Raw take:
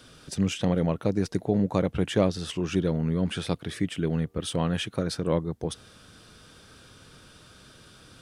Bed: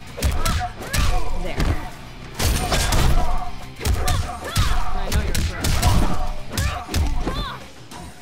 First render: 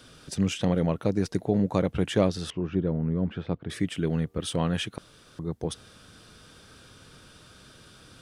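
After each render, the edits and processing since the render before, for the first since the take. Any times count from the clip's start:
0:02.50–0:03.70: head-to-tape spacing loss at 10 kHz 44 dB
0:04.98–0:05.39: fill with room tone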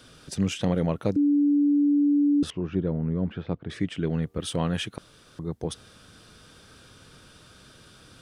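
0:01.16–0:02.43: beep over 289 Hz −17.5 dBFS
0:03.32–0:04.23: high-frequency loss of the air 71 metres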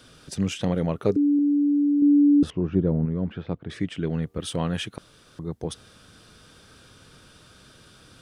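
0:00.96–0:01.39: hollow resonant body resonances 410/1,200 Hz, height 12 dB, ringing for 60 ms
0:02.02–0:03.06: tilt shelving filter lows +5 dB, about 1,300 Hz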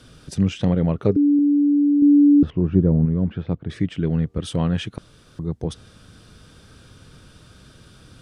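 treble cut that deepens with the level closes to 2,000 Hz, closed at −16 dBFS
low-shelf EQ 240 Hz +9.5 dB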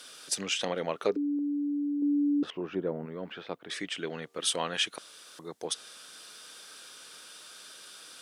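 high-pass filter 450 Hz 12 dB per octave
spectral tilt +3 dB per octave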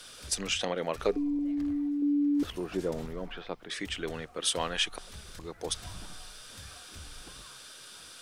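mix in bed −27.5 dB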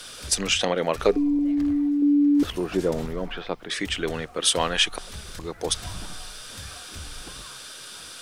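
level +8 dB

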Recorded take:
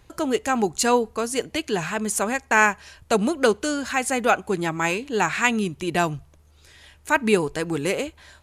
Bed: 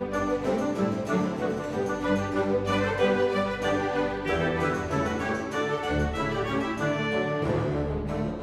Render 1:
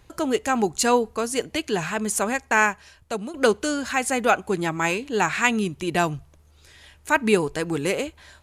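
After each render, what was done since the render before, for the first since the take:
0:02.38–0:03.34: fade out, to −13 dB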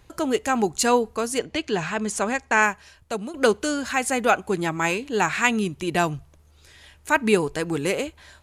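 0:01.38–0:02.61: low-pass filter 5,400 Hz → 8,900 Hz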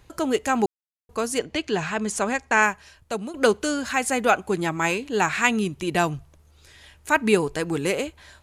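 0:00.66–0:01.09: silence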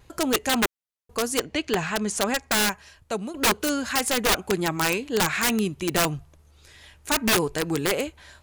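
pitch vibrato 1.8 Hz 31 cents
wrap-around overflow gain 14 dB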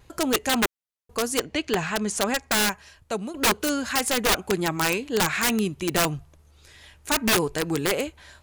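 no processing that can be heard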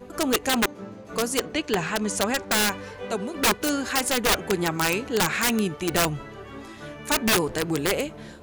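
mix in bed −12.5 dB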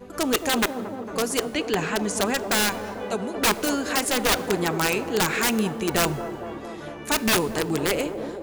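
delay with a band-pass on its return 226 ms, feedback 73%, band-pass 480 Hz, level −8 dB
four-comb reverb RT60 1.2 s, combs from 25 ms, DRR 19 dB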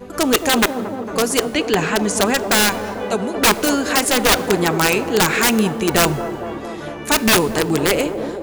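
level +7 dB

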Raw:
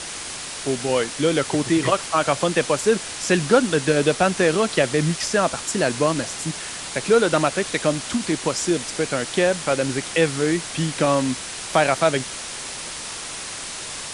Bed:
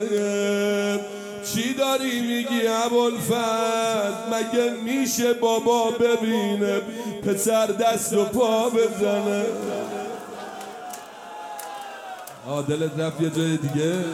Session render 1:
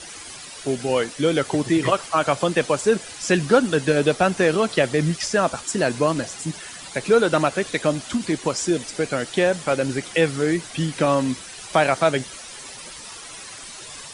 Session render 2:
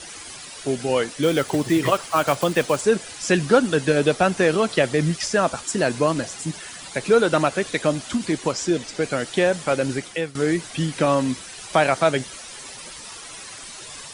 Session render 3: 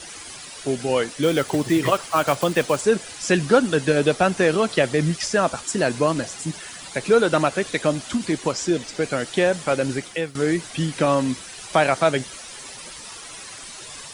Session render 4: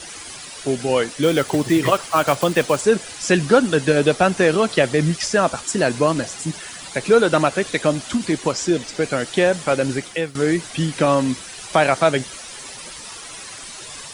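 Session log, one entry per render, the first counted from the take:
broadband denoise 11 dB, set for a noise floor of −33 dBFS
0:01.23–0:02.83: one scale factor per block 5 bits; 0:08.52–0:09.02: low-pass filter 7,300 Hz; 0:09.93–0:10.35: fade out, to −17 dB
bit reduction 11 bits
level +2.5 dB; brickwall limiter −2 dBFS, peak gain reduction 1 dB

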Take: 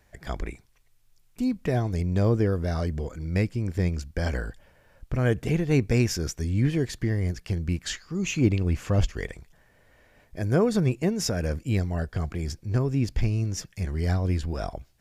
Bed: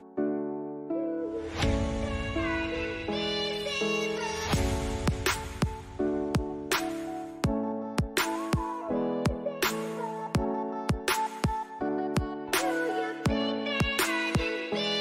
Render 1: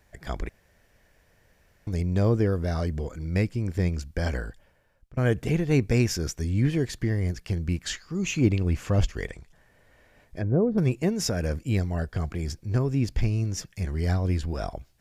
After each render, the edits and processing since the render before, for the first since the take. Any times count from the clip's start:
0:00.49–0:01.87: fill with room tone
0:04.27–0:05.17: fade out, to −23.5 dB
0:09.27–0:10.78: treble cut that deepens with the level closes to 560 Hz, closed at −22 dBFS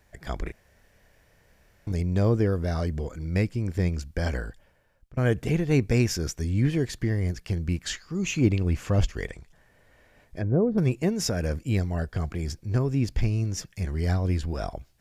0:00.43–0:01.92: double-tracking delay 30 ms −4 dB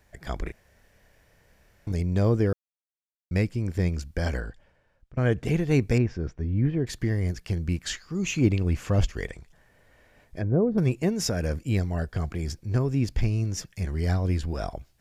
0:02.53–0:03.31: silence
0:04.40–0:05.45: high-frequency loss of the air 63 metres
0:05.98–0:06.87: head-to-tape spacing loss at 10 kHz 41 dB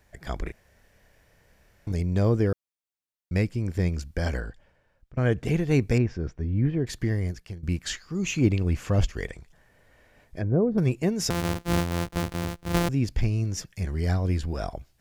0:07.15–0:07.63: fade out, to −16.5 dB
0:11.30–0:12.89: samples sorted by size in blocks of 256 samples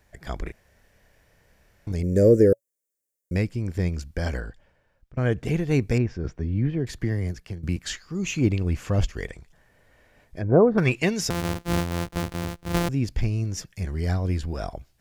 0:02.03–0:03.36: drawn EQ curve 120 Hz 0 dB, 280 Hz +6 dB, 560 Hz +13 dB, 830 Hz −23 dB, 1,800 Hz +2 dB, 3,200 Hz −14 dB, 7,100 Hz +11 dB
0:06.24–0:07.77: multiband upward and downward compressor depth 40%
0:10.48–0:11.19: parametric band 800 Hz → 4,100 Hz +15 dB 2.6 octaves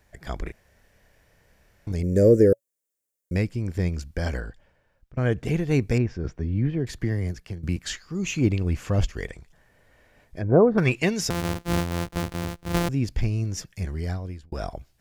0:13.83–0:14.52: fade out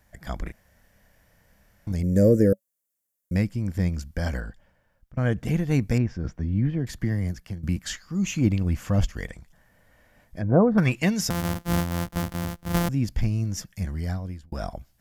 thirty-one-band graphic EQ 200 Hz +5 dB, 400 Hz −10 dB, 2,500 Hz −4 dB, 4,000 Hz −3 dB, 12,500 Hz +7 dB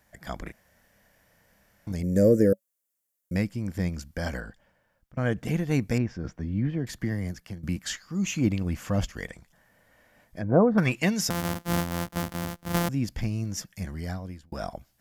low-shelf EQ 100 Hz −11.5 dB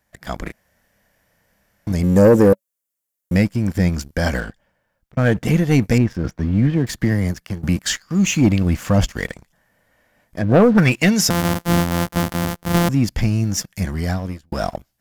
leveller curve on the samples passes 2
automatic gain control gain up to 4 dB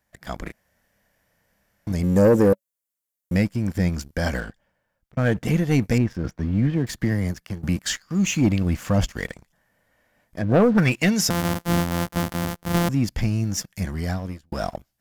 level −4.5 dB

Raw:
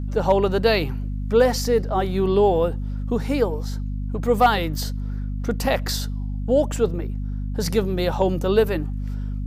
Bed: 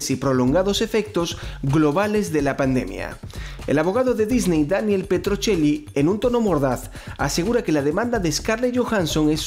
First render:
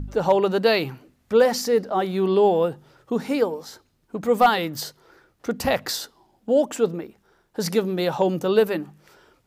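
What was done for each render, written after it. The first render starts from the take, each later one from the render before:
hum removal 50 Hz, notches 5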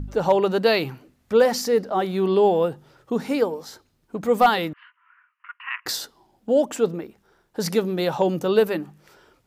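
0:04.73–0:05.86: Chebyshev band-pass filter 990–2,900 Hz, order 5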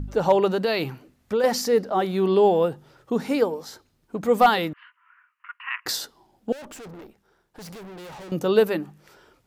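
0:00.52–0:01.44: downward compressor, threshold −19 dBFS
0:06.52–0:08.32: tube saturation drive 39 dB, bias 0.7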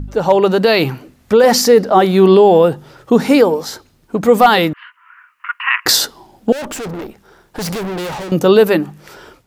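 automatic gain control gain up to 13 dB
boost into a limiter +5.5 dB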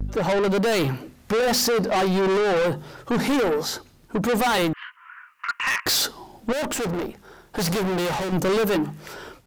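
soft clipping −19 dBFS, distortion −4 dB
pitch vibrato 0.48 Hz 31 cents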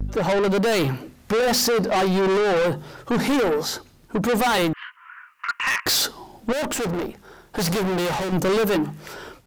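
level +1 dB

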